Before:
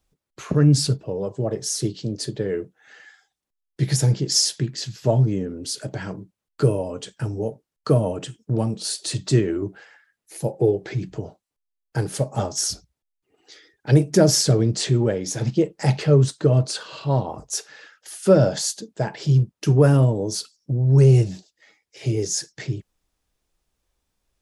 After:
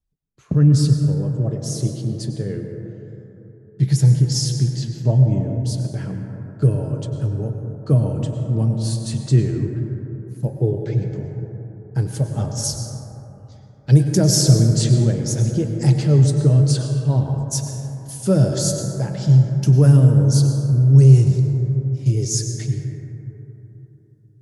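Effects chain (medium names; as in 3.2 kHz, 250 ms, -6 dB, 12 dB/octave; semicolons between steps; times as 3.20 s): tone controls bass +13 dB, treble +2 dB, from 12.63 s treble +10 dB; gate -31 dBFS, range -11 dB; plate-style reverb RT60 3.5 s, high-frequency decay 0.25×, pre-delay 85 ms, DRR 4 dB; trim -7 dB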